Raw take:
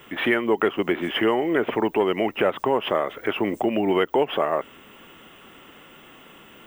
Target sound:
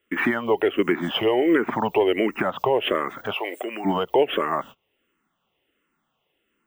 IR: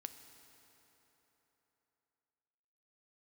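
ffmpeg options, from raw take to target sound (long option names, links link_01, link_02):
-filter_complex "[0:a]alimiter=limit=-13.5dB:level=0:latency=1:release=206,agate=range=-29dB:threshold=-38dB:ratio=16:detection=peak,asplit=3[link_01][link_02][link_03];[link_01]afade=type=out:start_time=3.34:duration=0.02[link_04];[link_02]highpass=700,afade=type=in:start_time=3.34:duration=0.02,afade=type=out:start_time=3.84:duration=0.02[link_05];[link_03]afade=type=in:start_time=3.84:duration=0.02[link_06];[link_04][link_05][link_06]amix=inputs=3:normalize=0,asplit=2[link_07][link_08];[link_08]afreqshift=-1.4[link_09];[link_07][link_09]amix=inputs=2:normalize=1,volume=6dB"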